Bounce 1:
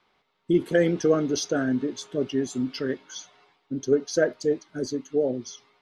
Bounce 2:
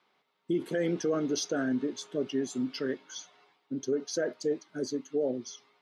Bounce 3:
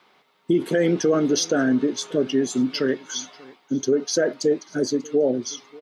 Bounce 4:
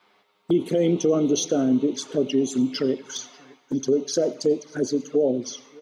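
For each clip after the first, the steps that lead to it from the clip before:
peak limiter -17 dBFS, peak gain reduction 7.5 dB; high-pass 160 Hz 12 dB/octave; trim -3.5 dB
in parallel at -1 dB: compression, threshold -37 dBFS, peak gain reduction 12 dB; on the sum: delay 589 ms -23 dB; trim +7.5 dB
touch-sensitive flanger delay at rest 10.3 ms, full sweep at -19 dBFS; on a send at -20 dB: reverberation, pre-delay 76 ms

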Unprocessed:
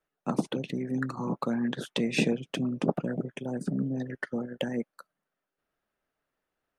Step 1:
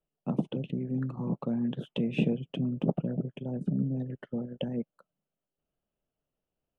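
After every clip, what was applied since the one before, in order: FFT filter 160 Hz 0 dB, 300 Hz -7 dB, 610 Hz -7 dB, 1.9 kHz -22 dB, 3 kHz -7 dB, 4.6 kHz -30 dB, 7.9 kHz -27 dB; trim +3.5 dB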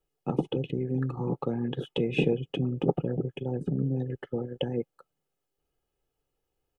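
comb 2.4 ms, depth 66%; trim +4 dB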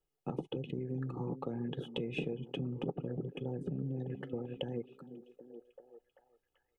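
repeats whose band climbs or falls 389 ms, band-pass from 210 Hz, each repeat 0.7 oct, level -11.5 dB; compression 4:1, threshold -29 dBFS, peak gain reduction 10 dB; trim -5 dB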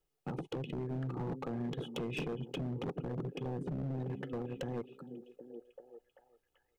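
hard clipper -36 dBFS, distortion -9 dB; trim +2.5 dB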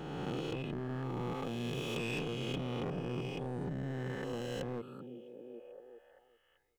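reverse spectral sustain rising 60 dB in 2.35 s; trim -3 dB

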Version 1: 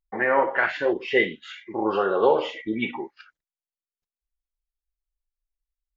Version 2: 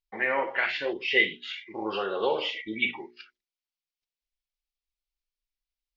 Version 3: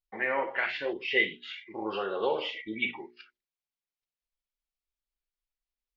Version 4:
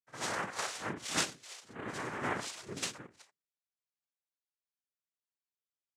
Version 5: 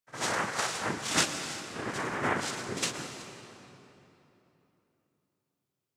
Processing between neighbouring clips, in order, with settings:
high-order bell 3.4 kHz +12 dB; hum notches 60/120/180/240/300/360/420 Hz; trim -7.5 dB
treble shelf 4.7 kHz -8.5 dB; trim -2 dB
noise-vocoded speech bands 3; reverse echo 58 ms -14 dB; trim -7 dB
reverberation RT60 3.3 s, pre-delay 110 ms, DRR 7 dB; trim +5.5 dB

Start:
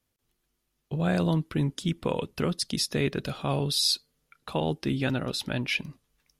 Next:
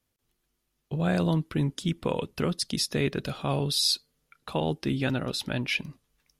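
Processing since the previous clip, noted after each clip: no audible change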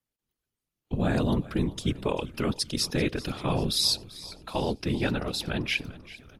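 whisper effect; frequency-shifting echo 390 ms, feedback 54%, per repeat -44 Hz, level -18 dB; spectral noise reduction 10 dB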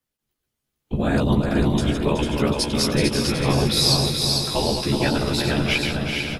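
backward echo that repeats 187 ms, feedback 77%, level -6.5 dB; doubling 14 ms -4 dB; delay 447 ms -5 dB; trim +3.5 dB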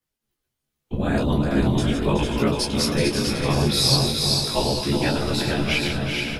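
detune thickener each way 16 cents; trim +3 dB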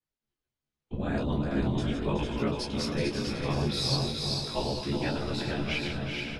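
distance through air 66 m; trim -8 dB

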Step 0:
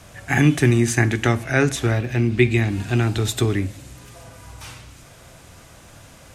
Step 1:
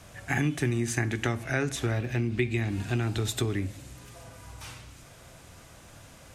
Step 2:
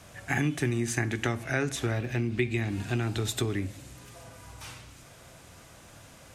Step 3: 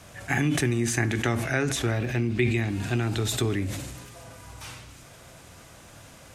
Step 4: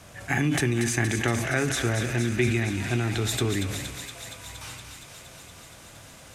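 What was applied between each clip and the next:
compression 3:1, threshold -20 dBFS, peak gain reduction 8 dB; trim -5 dB
bass shelf 68 Hz -6 dB
decay stretcher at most 39 dB/s; trim +2.5 dB
thinning echo 234 ms, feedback 81%, high-pass 870 Hz, level -7 dB

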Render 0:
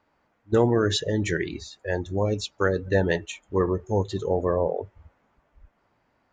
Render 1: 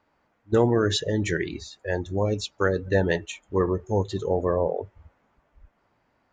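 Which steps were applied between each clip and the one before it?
no audible change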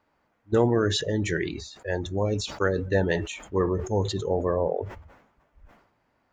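decay stretcher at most 78 dB/s; trim -1.5 dB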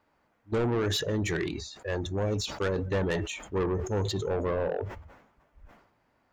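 saturation -23 dBFS, distortion -10 dB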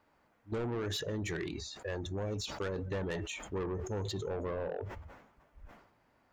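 compression 2.5:1, threshold -38 dBFS, peak gain reduction 8.5 dB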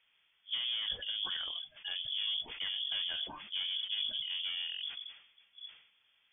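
octave divider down 1 oct, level +2 dB; frequency inversion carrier 3.4 kHz; trim -3.5 dB

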